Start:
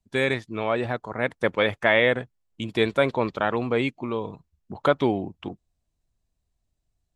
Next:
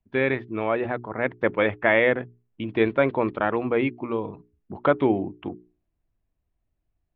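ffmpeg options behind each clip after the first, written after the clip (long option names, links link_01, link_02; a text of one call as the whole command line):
ffmpeg -i in.wav -af "lowpass=frequency=2700:width=0.5412,lowpass=frequency=2700:width=1.3066,equalizer=frequency=320:width=2.9:gain=5,bandreject=frequency=60:width_type=h:width=6,bandreject=frequency=120:width_type=h:width=6,bandreject=frequency=180:width_type=h:width=6,bandreject=frequency=240:width_type=h:width=6,bandreject=frequency=300:width_type=h:width=6,bandreject=frequency=360:width_type=h:width=6,bandreject=frequency=420:width_type=h:width=6" out.wav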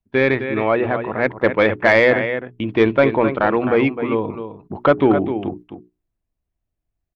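ffmpeg -i in.wav -af "agate=range=-10dB:threshold=-43dB:ratio=16:detection=peak,aecho=1:1:260:0.316,acontrast=85" out.wav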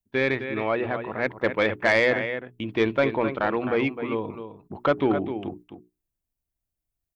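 ffmpeg -i in.wav -af "crystalizer=i=2.5:c=0,volume=-8dB" out.wav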